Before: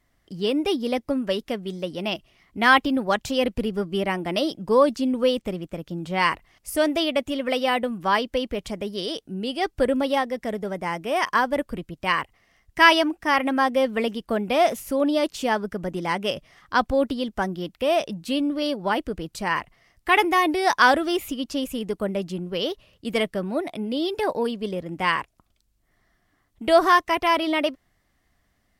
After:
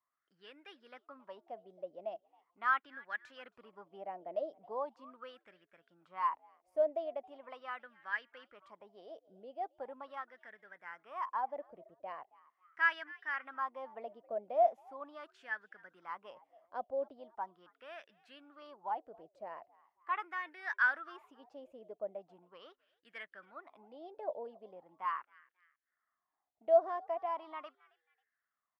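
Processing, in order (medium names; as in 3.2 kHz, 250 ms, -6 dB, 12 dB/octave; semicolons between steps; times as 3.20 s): on a send: frequency-shifting echo 271 ms, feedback 33%, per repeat +85 Hz, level -24 dB; on the sum: wah-wah 0.4 Hz 620–1700 Hz, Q 6.7; trim -7 dB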